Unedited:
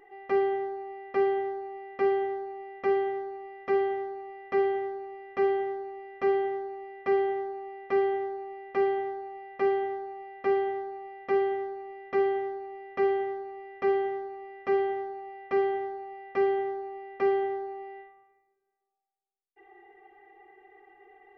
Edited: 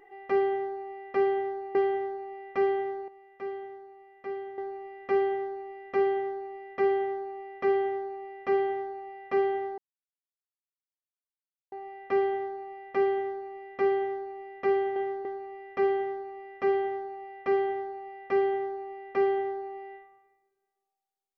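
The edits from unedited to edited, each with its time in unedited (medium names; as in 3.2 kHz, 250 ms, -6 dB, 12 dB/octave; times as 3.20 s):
1.75–2.03 s: delete
3.36–4.86 s: gain -10.5 dB
5.56–5.85 s: copy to 13.30 s
10.06 s: insert silence 1.94 s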